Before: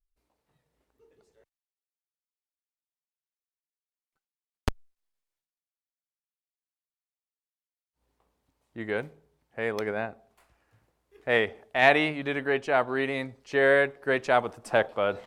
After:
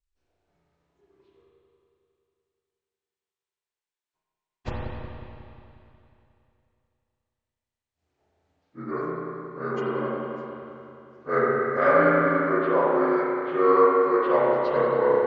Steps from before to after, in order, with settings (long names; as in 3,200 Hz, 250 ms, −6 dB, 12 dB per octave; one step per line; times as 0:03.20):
partials spread apart or drawn together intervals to 80%
spring reverb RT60 2.9 s, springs 30/36 ms, chirp 65 ms, DRR −6 dB
level −2 dB